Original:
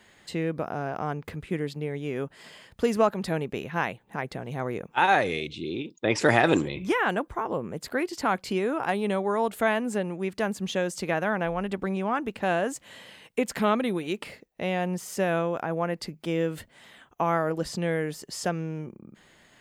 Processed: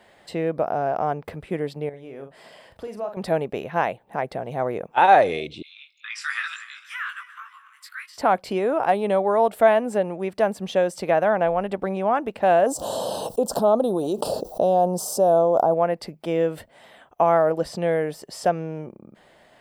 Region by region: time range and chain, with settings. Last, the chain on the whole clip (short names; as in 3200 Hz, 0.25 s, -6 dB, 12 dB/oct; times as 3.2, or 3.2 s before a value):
1.89–3.17 compressor 2:1, threshold -48 dBFS + doubler 44 ms -7 dB
5.62–8.18 regenerating reverse delay 0.147 s, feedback 57%, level -14 dB + steep high-pass 1200 Hz 72 dB/oct + chorus 2.1 Hz, delay 18.5 ms, depth 2.6 ms
12.66–15.74 Butterworth band-stop 2100 Hz, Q 0.59 + low shelf 380 Hz -5 dB + fast leveller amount 70%
whole clip: bell 650 Hz +12 dB 1.1 oct; notch 6700 Hz, Q 7.7; gain -1 dB